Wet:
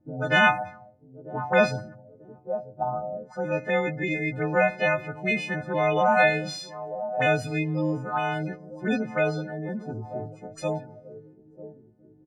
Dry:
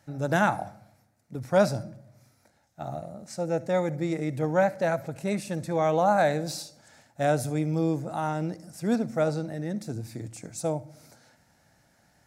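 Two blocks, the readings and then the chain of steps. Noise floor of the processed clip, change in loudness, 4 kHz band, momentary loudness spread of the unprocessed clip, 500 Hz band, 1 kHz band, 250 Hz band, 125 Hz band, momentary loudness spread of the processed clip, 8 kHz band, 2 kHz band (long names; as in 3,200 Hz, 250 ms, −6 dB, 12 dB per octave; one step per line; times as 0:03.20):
−55 dBFS, +2.0 dB, +6.5 dB, 15 LU, +1.0 dB, +2.5 dB, −1.0 dB, −0.5 dB, 16 LU, −6.5 dB, +10.0 dB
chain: every partial snapped to a pitch grid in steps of 3 semitones
gate on every frequency bin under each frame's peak −25 dB strong
harmonic generator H 4 −36 dB, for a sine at −8.5 dBFS
repeating echo 943 ms, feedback 38%, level −18 dB
envelope-controlled low-pass 310–2,600 Hz up, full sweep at −25 dBFS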